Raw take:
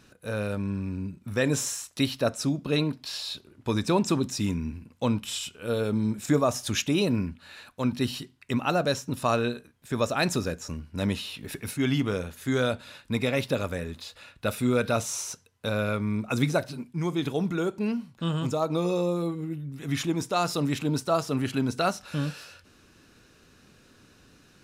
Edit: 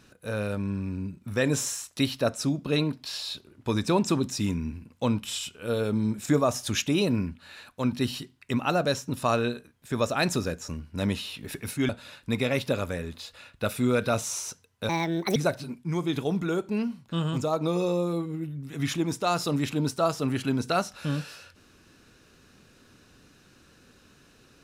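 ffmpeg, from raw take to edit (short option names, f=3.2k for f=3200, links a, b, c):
-filter_complex "[0:a]asplit=4[a][b][c][d];[a]atrim=end=11.892[e];[b]atrim=start=12.708:end=15.714[f];[c]atrim=start=15.71:end=16.45,asetpts=PTS-STARTPTS,asetrate=69678,aresample=44100,atrim=end_sample=20654,asetpts=PTS-STARTPTS[g];[d]atrim=start=16.446[h];[e][f]acrossfade=d=0.004:c1=hsin:c2=hsin[i];[i][g]acrossfade=d=0.004:c1=hsin:c2=hsin[j];[j][h]acrossfade=d=0.004:c1=hsin:c2=hsin"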